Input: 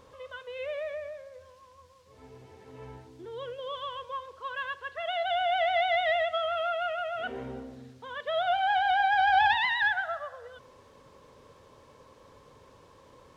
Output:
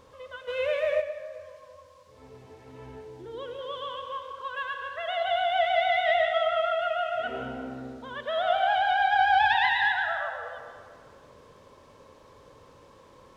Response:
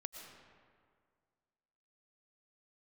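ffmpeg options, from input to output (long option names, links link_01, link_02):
-filter_complex "[1:a]atrim=start_sample=2205[link_01];[0:a][link_01]afir=irnorm=-1:irlink=0,asplit=3[link_02][link_03][link_04];[link_02]afade=type=out:start_time=0.47:duration=0.02[link_05];[link_03]acontrast=70,afade=type=in:start_time=0.47:duration=0.02,afade=type=out:start_time=1:duration=0.02[link_06];[link_04]afade=type=in:start_time=1:duration=0.02[link_07];[link_05][link_06][link_07]amix=inputs=3:normalize=0,volume=5dB"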